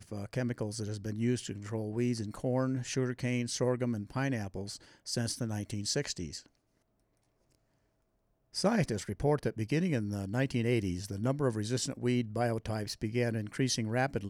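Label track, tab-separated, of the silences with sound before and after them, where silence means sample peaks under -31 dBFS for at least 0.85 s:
6.370000	8.570000	silence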